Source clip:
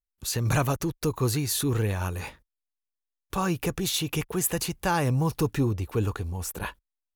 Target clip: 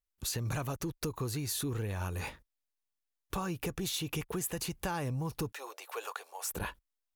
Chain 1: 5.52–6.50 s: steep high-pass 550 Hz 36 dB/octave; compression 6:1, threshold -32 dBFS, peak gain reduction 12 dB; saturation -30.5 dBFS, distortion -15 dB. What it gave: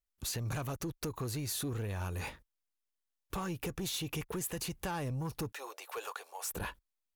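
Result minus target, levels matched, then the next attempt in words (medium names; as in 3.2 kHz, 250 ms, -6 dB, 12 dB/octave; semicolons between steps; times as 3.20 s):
saturation: distortion +12 dB
5.52–6.50 s: steep high-pass 550 Hz 36 dB/octave; compression 6:1, threshold -32 dBFS, peak gain reduction 12 dB; saturation -22.5 dBFS, distortion -27 dB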